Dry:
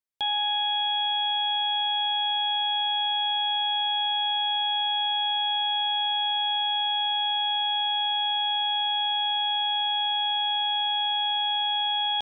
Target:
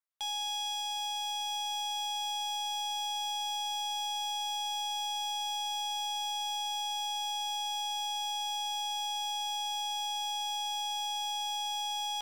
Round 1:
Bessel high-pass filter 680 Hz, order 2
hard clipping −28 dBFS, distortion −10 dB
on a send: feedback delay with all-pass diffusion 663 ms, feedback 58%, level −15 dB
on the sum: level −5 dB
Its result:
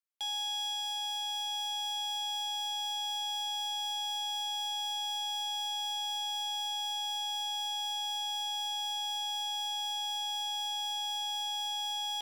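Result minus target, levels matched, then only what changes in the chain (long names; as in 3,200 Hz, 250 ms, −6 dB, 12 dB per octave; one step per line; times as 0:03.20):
1,000 Hz band −3.0 dB
add after Bessel high-pass filter: parametric band 1,200 Hz +9 dB 0.94 octaves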